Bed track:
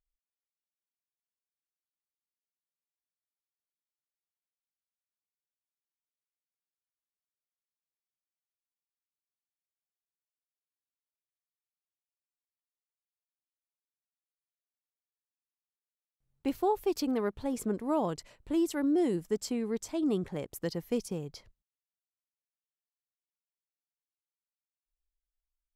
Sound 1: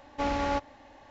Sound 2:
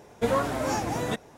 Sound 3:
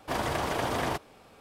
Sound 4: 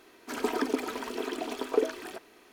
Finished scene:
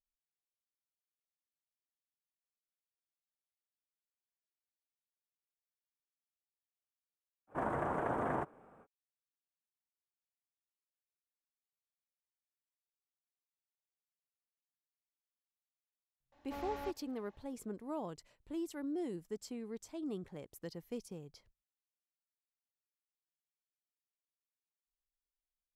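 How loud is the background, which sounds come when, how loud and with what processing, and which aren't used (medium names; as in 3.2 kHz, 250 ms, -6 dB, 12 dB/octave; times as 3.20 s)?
bed track -11.5 dB
7.47 s: add 3 -11.5 dB, fades 0.05 s + FFT filter 100 Hz 0 dB, 150 Hz +7 dB, 1.5 kHz +6 dB, 4.6 kHz -26 dB, 8.4 kHz -9 dB, 14 kHz -20 dB
16.32 s: add 1 -16 dB
not used: 2, 4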